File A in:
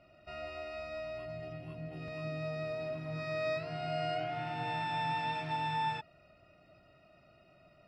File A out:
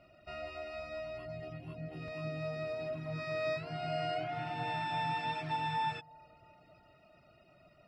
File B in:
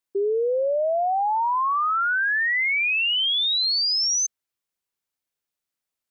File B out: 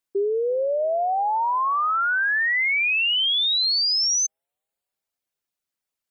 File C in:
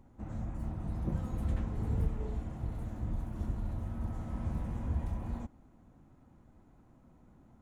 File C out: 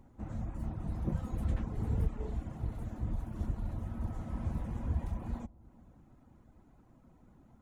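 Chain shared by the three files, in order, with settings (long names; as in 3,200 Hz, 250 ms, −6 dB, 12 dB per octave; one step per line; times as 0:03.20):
reverb reduction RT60 0.55 s
bucket-brigade delay 344 ms, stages 2,048, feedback 55%, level −23 dB
level +1 dB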